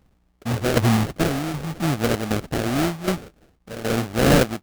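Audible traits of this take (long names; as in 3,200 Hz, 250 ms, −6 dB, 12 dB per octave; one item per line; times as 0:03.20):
a buzz of ramps at a fixed pitch in blocks of 8 samples
tremolo saw down 1.3 Hz, depth 70%
aliases and images of a low sample rate 1,000 Hz, jitter 20%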